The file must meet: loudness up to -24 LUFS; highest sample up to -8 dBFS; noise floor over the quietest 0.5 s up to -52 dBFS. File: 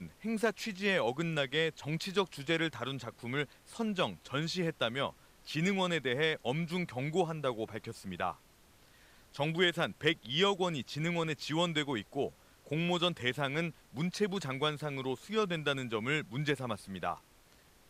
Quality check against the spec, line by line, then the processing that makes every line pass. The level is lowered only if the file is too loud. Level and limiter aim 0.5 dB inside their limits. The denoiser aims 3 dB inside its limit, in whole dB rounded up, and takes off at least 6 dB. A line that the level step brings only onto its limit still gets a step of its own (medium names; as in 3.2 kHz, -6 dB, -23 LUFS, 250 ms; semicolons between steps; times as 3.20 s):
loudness -34.0 LUFS: pass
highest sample -14.5 dBFS: pass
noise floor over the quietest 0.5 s -63 dBFS: pass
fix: none needed